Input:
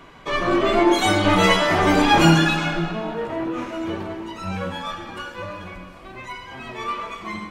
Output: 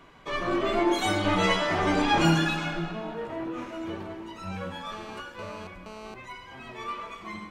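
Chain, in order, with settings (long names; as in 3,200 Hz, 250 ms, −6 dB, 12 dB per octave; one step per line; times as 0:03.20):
0:01.30–0:02.25: low-pass filter 8,400 Hz 12 dB per octave
0:04.92–0:06.14: phone interference −35 dBFS
level −7.5 dB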